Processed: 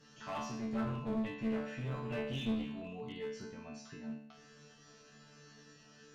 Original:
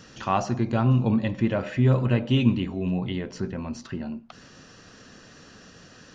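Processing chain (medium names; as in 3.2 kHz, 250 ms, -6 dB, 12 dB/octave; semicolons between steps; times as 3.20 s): chord resonator D3 fifth, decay 0.65 s; one-sided clip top -44 dBFS; trim +6.5 dB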